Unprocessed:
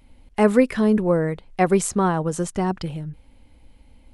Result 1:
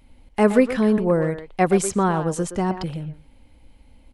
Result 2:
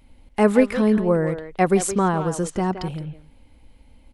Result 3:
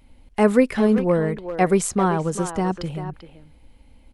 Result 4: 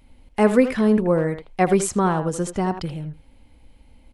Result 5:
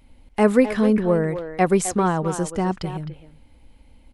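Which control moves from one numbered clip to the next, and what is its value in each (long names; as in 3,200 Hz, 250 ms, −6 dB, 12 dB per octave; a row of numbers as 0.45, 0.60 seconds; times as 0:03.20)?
far-end echo of a speakerphone, delay time: 120, 170, 390, 80, 260 milliseconds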